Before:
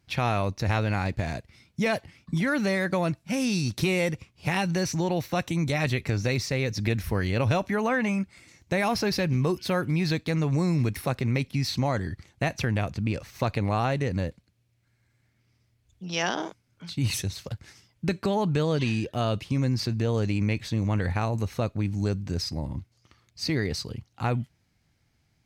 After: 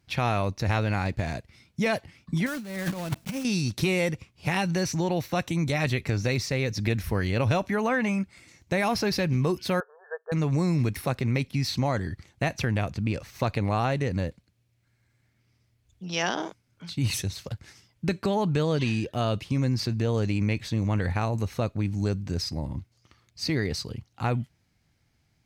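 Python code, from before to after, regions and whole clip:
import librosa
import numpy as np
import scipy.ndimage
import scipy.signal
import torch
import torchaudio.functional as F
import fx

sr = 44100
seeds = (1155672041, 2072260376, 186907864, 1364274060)

y = fx.chain(x, sr, fx.block_float(bits=3),
    fx.peak_eq(hz=210.0, db=6.5, octaves=0.54),
    fx.over_compress(threshold_db=-29.0, ratio=-0.5), at=(2.46, 3.45))
y = fx.chain(y, sr, fx.brickwall_bandpass(low_hz=410.0, high_hz=1800.0),
    fx.upward_expand(threshold_db=-42.0, expansion=1.5), at=(9.8, 10.32))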